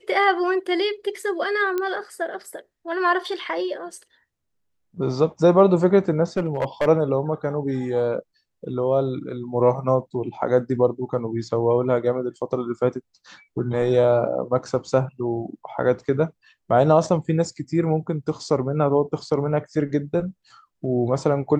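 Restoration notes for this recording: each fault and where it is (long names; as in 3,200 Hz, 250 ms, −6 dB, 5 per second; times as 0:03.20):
0:01.78: click −13 dBFS
0:06.37–0:06.88: clipping −17 dBFS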